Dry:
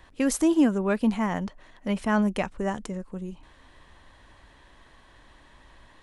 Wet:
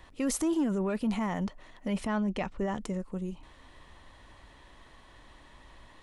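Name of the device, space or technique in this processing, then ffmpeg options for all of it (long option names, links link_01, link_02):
soft clipper into limiter: -filter_complex "[0:a]asettb=1/sr,asplit=3[link_01][link_02][link_03];[link_01]atrim=end=2.074[link_04];[link_02]atrim=start=2.07:end=2.81,asetpts=PTS-STARTPTS,afade=type=in:duration=0.004:curve=qsin,afade=type=out:start_time=0.736:duration=0.004:curve=qsin,lowpass=5500[link_05];[link_03]atrim=start=2.806[link_06];[link_04][link_05]acrossfade=duration=0.004:curve1=hsin:curve2=qsin[link_07];[link_07][link_06]acrossfade=duration=0.004:curve1=qsin:curve2=hsin,bandreject=frequency=1600:width=11,asoftclip=type=tanh:threshold=-14.5dB,alimiter=limit=-23dB:level=0:latency=1:release=12"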